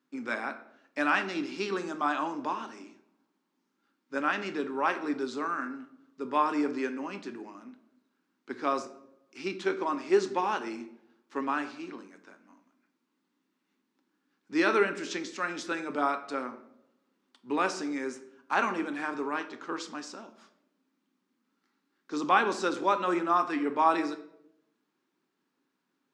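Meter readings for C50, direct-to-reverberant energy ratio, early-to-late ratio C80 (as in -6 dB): 12.5 dB, 8.0 dB, 15.5 dB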